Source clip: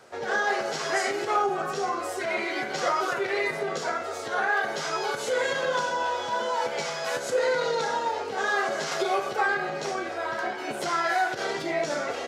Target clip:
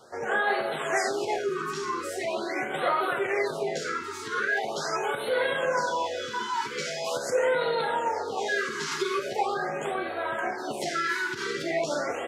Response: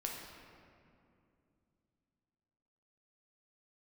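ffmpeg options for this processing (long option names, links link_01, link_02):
-filter_complex "[0:a]asplit=2[link_01][link_02];[link_02]equalizer=frequency=125:width_type=o:width=1:gain=-9,equalizer=frequency=250:width_type=o:width=1:gain=12,equalizer=frequency=500:width_type=o:width=1:gain=6,equalizer=frequency=1000:width_type=o:width=1:gain=-9,equalizer=frequency=4000:width_type=o:width=1:gain=7,equalizer=frequency=8000:width_type=o:width=1:gain=10[link_03];[1:a]atrim=start_sample=2205,adelay=54[link_04];[link_03][link_04]afir=irnorm=-1:irlink=0,volume=-21dB[link_05];[link_01][link_05]amix=inputs=2:normalize=0,afftfilt=real='re*(1-between(b*sr/1024,600*pow(6400/600,0.5+0.5*sin(2*PI*0.42*pts/sr))/1.41,600*pow(6400/600,0.5+0.5*sin(2*PI*0.42*pts/sr))*1.41))':imag='im*(1-between(b*sr/1024,600*pow(6400/600,0.5+0.5*sin(2*PI*0.42*pts/sr))/1.41,600*pow(6400/600,0.5+0.5*sin(2*PI*0.42*pts/sr))*1.41))':win_size=1024:overlap=0.75"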